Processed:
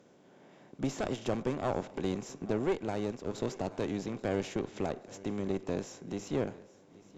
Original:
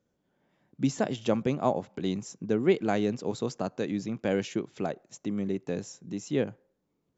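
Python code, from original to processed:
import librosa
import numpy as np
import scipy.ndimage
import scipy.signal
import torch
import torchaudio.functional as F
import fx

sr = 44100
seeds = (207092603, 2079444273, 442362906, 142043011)

y = fx.bin_compress(x, sr, power=0.6)
y = fx.highpass(y, sr, hz=130.0, slope=6)
y = fx.tube_stage(y, sr, drive_db=18.0, bias=0.75)
y = fx.echo_feedback(y, sr, ms=831, feedback_pct=42, wet_db=-20)
y = fx.upward_expand(y, sr, threshold_db=-36.0, expansion=1.5, at=(2.72, 3.34), fade=0.02)
y = F.gain(torch.from_numpy(y), -3.0).numpy()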